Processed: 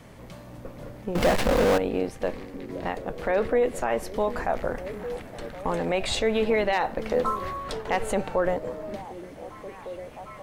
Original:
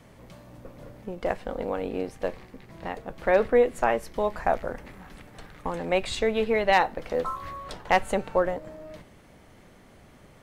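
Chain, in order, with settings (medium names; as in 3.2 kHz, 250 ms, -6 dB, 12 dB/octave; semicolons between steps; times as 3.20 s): peak limiter -19 dBFS, peak gain reduction 10 dB; repeats whose band climbs or falls 753 ms, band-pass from 280 Hz, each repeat 0.7 oct, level -8.5 dB; 1.15–1.78 s: power-law waveshaper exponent 0.35; trim +4.5 dB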